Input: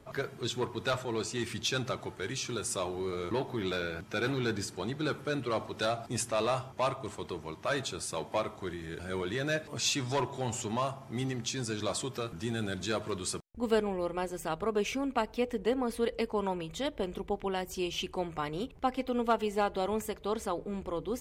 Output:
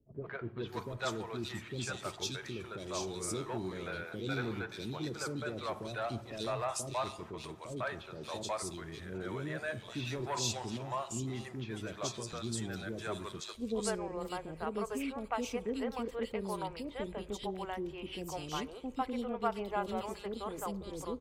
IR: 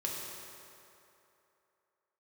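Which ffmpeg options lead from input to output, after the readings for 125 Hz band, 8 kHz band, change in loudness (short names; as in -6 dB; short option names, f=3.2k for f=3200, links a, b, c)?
-3.5 dB, -4.0 dB, -5.0 dB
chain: -filter_complex "[0:a]agate=range=-11dB:threshold=-44dB:ratio=16:detection=peak,acrossover=split=470|2800[a][b][c];[b]adelay=150[d];[c]adelay=580[e];[a][d][e]amix=inputs=3:normalize=0,asplit=2[f][g];[1:a]atrim=start_sample=2205,lowpass=6k[h];[g][h]afir=irnorm=-1:irlink=0,volume=-23.5dB[i];[f][i]amix=inputs=2:normalize=0,volume=-4dB"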